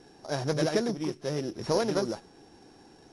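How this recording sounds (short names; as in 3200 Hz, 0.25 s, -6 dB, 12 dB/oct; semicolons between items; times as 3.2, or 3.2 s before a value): a buzz of ramps at a fixed pitch in blocks of 8 samples; AAC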